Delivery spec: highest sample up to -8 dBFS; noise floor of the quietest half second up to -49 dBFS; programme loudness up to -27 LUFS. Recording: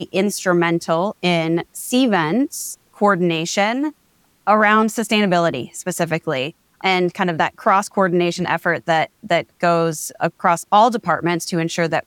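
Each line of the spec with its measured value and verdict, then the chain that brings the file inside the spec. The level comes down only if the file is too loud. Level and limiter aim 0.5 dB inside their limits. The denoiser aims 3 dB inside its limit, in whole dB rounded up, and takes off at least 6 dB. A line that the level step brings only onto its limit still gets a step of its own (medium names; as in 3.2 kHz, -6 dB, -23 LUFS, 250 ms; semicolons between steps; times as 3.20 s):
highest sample -3.5 dBFS: fail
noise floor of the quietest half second -59 dBFS: pass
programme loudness -18.5 LUFS: fail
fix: trim -9 dB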